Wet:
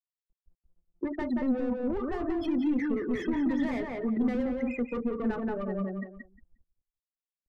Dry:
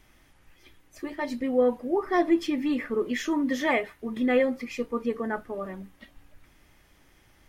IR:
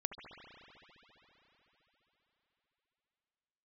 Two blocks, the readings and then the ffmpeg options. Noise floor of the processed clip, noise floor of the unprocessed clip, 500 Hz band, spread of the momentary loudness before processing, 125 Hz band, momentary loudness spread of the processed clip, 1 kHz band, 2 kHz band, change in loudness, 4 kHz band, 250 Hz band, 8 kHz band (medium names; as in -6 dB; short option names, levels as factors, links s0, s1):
under -85 dBFS, -61 dBFS, -6.5 dB, 12 LU, no reading, 6 LU, -7.5 dB, -8.5 dB, -3.5 dB, under -10 dB, -0.5 dB, under -15 dB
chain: -filter_complex "[0:a]afftfilt=real='re*gte(hypot(re,im),0.0316)':imag='im*gte(hypot(re,im),0.0316)':win_size=1024:overlap=0.75,asplit=2[s0][s1];[s1]highpass=f=720:p=1,volume=20,asoftclip=type=tanh:threshold=0.266[s2];[s0][s2]amix=inputs=2:normalize=0,lowpass=f=1000:p=1,volume=0.501,alimiter=limit=0.141:level=0:latency=1,asplit=2[s3][s4];[s4]adelay=178,lowpass=f=2300:p=1,volume=0.708,asplit=2[s5][s6];[s6]adelay=178,lowpass=f=2300:p=1,volume=0.18,asplit=2[s7][s8];[s8]adelay=178,lowpass=f=2300:p=1,volume=0.18[s9];[s3][s5][s7][s9]amix=inputs=4:normalize=0,acrossover=split=230[s10][s11];[s11]acompressor=threshold=0.0178:ratio=6[s12];[s10][s12]amix=inputs=2:normalize=0"